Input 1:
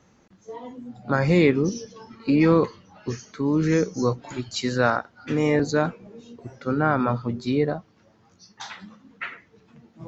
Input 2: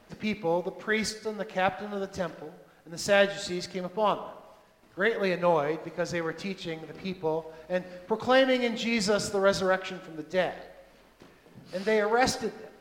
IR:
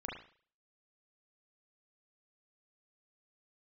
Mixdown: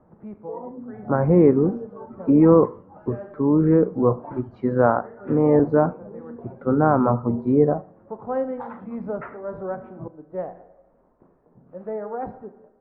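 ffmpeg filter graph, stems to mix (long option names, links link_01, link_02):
-filter_complex "[0:a]bass=frequency=250:gain=-3,treble=frequency=4000:gain=6,volume=2dB,asplit=3[link_01][link_02][link_03];[link_02]volume=-17.5dB[link_04];[1:a]volume=-8dB,asplit=2[link_05][link_06];[link_06]volume=-11dB[link_07];[link_03]apad=whole_len=564767[link_08];[link_05][link_08]sidechaincompress=threshold=-43dB:ratio=8:attack=30:release=298[link_09];[2:a]atrim=start_sample=2205[link_10];[link_04][link_07]amix=inputs=2:normalize=0[link_11];[link_11][link_10]afir=irnorm=-1:irlink=0[link_12];[link_01][link_09][link_12]amix=inputs=3:normalize=0,lowpass=frequency=1100:width=0.5412,lowpass=frequency=1100:width=1.3066,dynaudnorm=framelen=360:gausssize=7:maxgain=4dB"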